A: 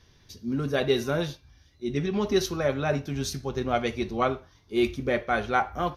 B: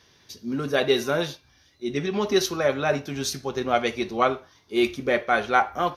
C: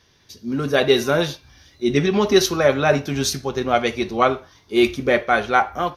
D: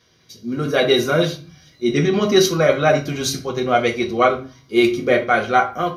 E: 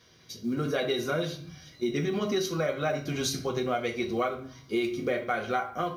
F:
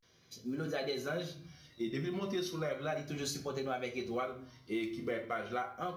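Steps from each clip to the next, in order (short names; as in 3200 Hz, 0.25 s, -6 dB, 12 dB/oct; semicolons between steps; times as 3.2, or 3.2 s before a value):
HPF 350 Hz 6 dB/oct; gain +5 dB
low shelf 84 Hz +8.5 dB; AGC gain up to 11.5 dB; gain -1 dB
notch comb 890 Hz; reverb RT60 0.30 s, pre-delay 4 ms, DRR 2.5 dB
compressor 5:1, threshold -26 dBFS, peak gain reduction 15.5 dB; companded quantiser 8-bit; gain -1 dB
vibrato 0.35 Hz 98 cents; gain -8 dB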